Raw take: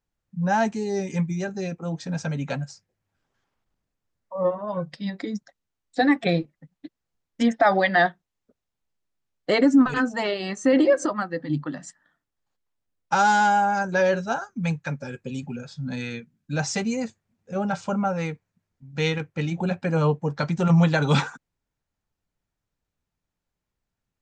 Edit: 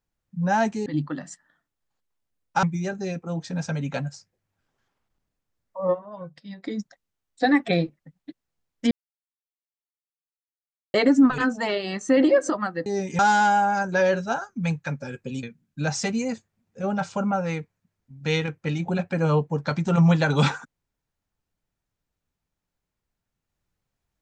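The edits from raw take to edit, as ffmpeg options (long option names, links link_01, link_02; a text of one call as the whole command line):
ffmpeg -i in.wav -filter_complex "[0:a]asplit=10[link_01][link_02][link_03][link_04][link_05][link_06][link_07][link_08][link_09][link_10];[link_01]atrim=end=0.862[link_11];[link_02]atrim=start=11.418:end=13.192[link_12];[link_03]atrim=start=1.188:end=4.73,asetpts=PTS-STARTPTS,afade=type=out:start_time=3.302:duration=0.24:curve=exp:silence=0.334965[link_13];[link_04]atrim=start=4.73:end=4.99,asetpts=PTS-STARTPTS,volume=-9.5dB[link_14];[link_05]atrim=start=4.99:end=7.47,asetpts=PTS-STARTPTS,afade=type=in:duration=0.24:curve=exp:silence=0.334965,afade=type=out:start_time=2.476:duration=0.004:curve=hsin[link_15];[link_06]atrim=start=7.47:end=9.5,asetpts=PTS-STARTPTS,volume=0[link_16];[link_07]atrim=start=9.5:end=11.422,asetpts=PTS-STARTPTS,afade=type=in:duration=0.004:curve=hsin[link_17];[link_08]atrim=start=0.858:end=1.192[link_18];[link_09]atrim=start=13.188:end=15.432[link_19];[link_10]atrim=start=16.148[link_20];[link_11][link_12]acrossfade=duration=0.004:curve1=hsin:curve2=hsin[link_21];[link_13][link_14][link_15][link_16][link_17]concat=n=5:v=0:a=1[link_22];[link_21][link_22]acrossfade=duration=0.004:curve1=hsin:curve2=hsin[link_23];[link_23][link_18]acrossfade=duration=0.004:curve1=hsin:curve2=hsin[link_24];[link_24][link_19]acrossfade=duration=0.004:curve1=hsin:curve2=hsin[link_25];[link_25][link_20]acrossfade=duration=0.004:curve1=hsin:curve2=hsin" out.wav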